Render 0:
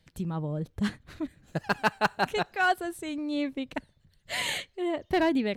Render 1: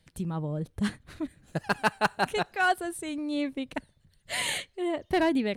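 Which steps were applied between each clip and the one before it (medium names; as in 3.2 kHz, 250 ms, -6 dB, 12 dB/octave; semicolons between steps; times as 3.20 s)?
peaking EQ 9.4 kHz +10.5 dB 0.22 oct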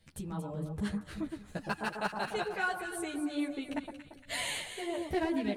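compression 2:1, threshold -36 dBFS, peak gain reduction 9.5 dB; echo whose repeats swap between lows and highs 115 ms, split 1.3 kHz, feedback 68%, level -5.5 dB; three-phase chorus; trim +2.5 dB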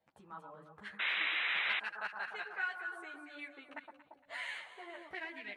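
painted sound noise, 0.99–1.80 s, 280–4000 Hz -31 dBFS; auto-wah 750–2100 Hz, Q 2.6, up, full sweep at -29 dBFS; trim +2 dB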